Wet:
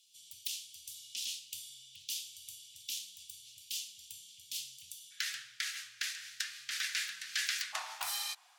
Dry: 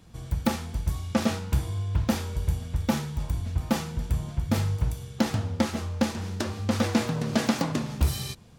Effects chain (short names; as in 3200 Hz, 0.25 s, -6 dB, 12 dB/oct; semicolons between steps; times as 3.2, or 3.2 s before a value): elliptic high-pass 2900 Hz, stop band 50 dB, from 5.1 s 1600 Hz, from 7.72 s 730 Hz; frequency shift +30 Hz